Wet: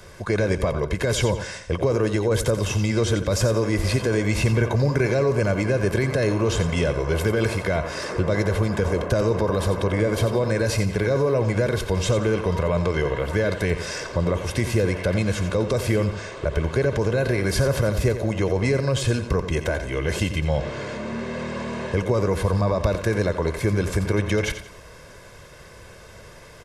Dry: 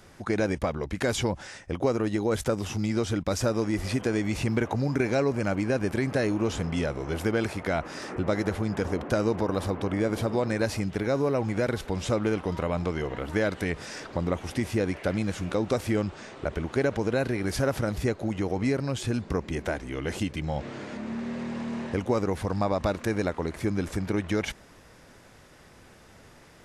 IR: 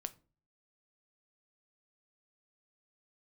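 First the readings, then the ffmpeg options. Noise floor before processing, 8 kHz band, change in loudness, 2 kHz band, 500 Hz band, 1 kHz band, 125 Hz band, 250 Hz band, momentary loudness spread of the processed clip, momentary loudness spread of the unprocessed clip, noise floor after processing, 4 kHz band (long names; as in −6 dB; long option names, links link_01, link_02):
−53 dBFS, +7.5 dB, +5.5 dB, +6.0 dB, +6.0 dB, +3.0 dB, +8.5 dB, +2.0 dB, 5 LU, 6 LU, −44 dBFS, +6.5 dB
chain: -filter_complex "[0:a]aecho=1:1:1.9:0.58,acrossover=split=280[link_01][link_02];[link_02]alimiter=limit=-23dB:level=0:latency=1:release=13[link_03];[link_01][link_03]amix=inputs=2:normalize=0,aecho=1:1:88|176|264|352:0.299|0.102|0.0345|0.0117,volume=6.5dB"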